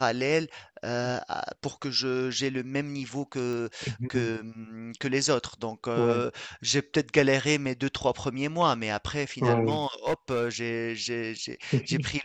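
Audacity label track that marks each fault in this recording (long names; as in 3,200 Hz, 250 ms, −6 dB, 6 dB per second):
3.530000	3.530000	click −24 dBFS
9.700000	10.490000	clipping −22 dBFS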